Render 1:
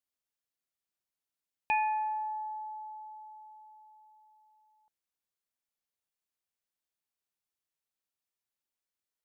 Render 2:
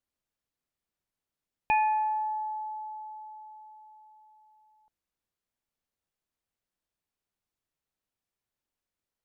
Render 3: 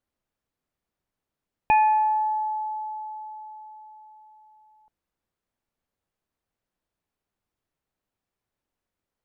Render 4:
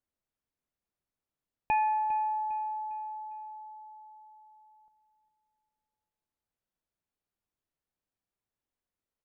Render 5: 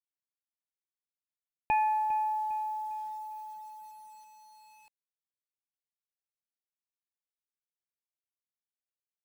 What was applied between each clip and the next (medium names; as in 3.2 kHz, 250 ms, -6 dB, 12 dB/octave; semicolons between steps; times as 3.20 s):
tilt EQ -2 dB/octave; trim +4 dB
treble shelf 2.4 kHz -10 dB; trim +7.5 dB
feedback delay 403 ms, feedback 41%, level -15 dB; trim -8 dB
bit crusher 10-bit